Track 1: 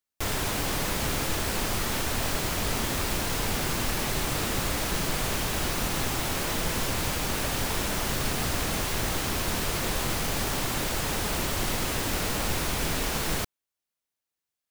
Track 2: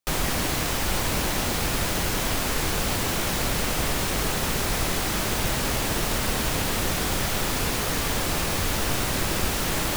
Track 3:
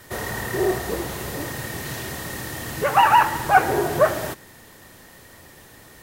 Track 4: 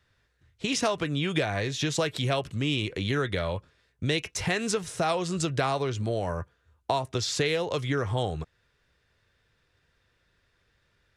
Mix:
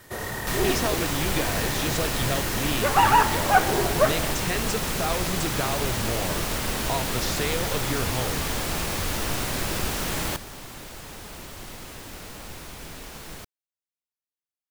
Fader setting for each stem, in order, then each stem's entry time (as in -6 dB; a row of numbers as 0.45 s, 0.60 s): -11.5 dB, -2.5 dB, -3.5 dB, -2.5 dB; 0.00 s, 0.40 s, 0.00 s, 0.00 s